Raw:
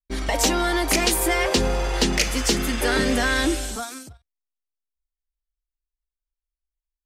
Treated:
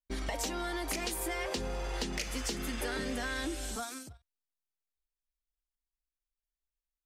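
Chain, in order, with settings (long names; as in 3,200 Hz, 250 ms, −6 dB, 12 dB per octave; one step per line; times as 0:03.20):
downward compressor, threshold −26 dBFS, peak gain reduction 10.5 dB
level −6.5 dB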